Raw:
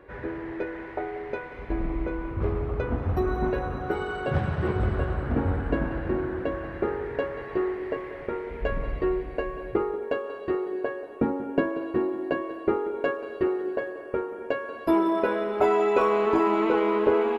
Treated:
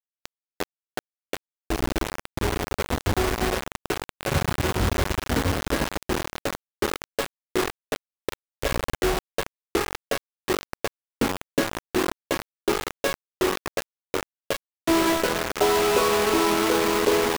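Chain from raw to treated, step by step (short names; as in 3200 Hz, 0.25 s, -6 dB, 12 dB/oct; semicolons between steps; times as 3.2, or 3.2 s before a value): bit-crush 4-bit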